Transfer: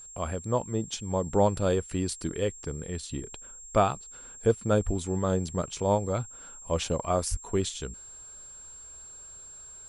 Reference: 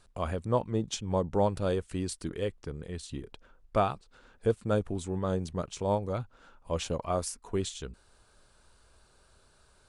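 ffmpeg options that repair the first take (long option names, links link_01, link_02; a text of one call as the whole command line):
ffmpeg -i in.wav -filter_complex "[0:a]bandreject=frequency=7500:width=30,asplit=3[link_01][link_02][link_03];[link_01]afade=type=out:start_time=4.85:duration=0.02[link_04];[link_02]highpass=frequency=140:width=0.5412,highpass=frequency=140:width=1.3066,afade=type=in:start_time=4.85:duration=0.02,afade=type=out:start_time=4.97:duration=0.02[link_05];[link_03]afade=type=in:start_time=4.97:duration=0.02[link_06];[link_04][link_05][link_06]amix=inputs=3:normalize=0,asplit=3[link_07][link_08][link_09];[link_07]afade=type=out:start_time=7.3:duration=0.02[link_10];[link_08]highpass=frequency=140:width=0.5412,highpass=frequency=140:width=1.3066,afade=type=in:start_time=7.3:duration=0.02,afade=type=out:start_time=7.42:duration=0.02[link_11];[link_09]afade=type=in:start_time=7.42:duration=0.02[link_12];[link_10][link_11][link_12]amix=inputs=3:normalize=0,asetnsamples=nb_out_samples=441:pad=0,asendcmd='1.26 volume volume -3.5dB',volume=0dB" out.wav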